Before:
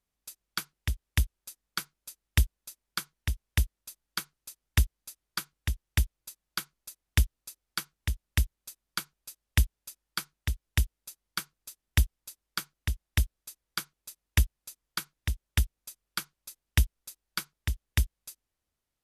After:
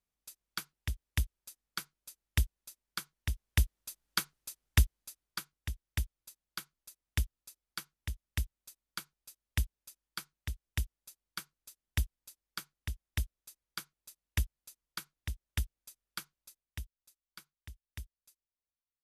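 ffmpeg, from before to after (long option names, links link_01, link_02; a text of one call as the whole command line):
ffmpeg -i in.wav -af "volume=2dB,afade=type=in:start_time=3.14:duration=1.06:silence=0.421697,afade=type=out:start_time=4.2:duration=1.35:silence=0.316228,afade=type=out:start_time=16.36:duration=0.42:silence=0.281838" out.wav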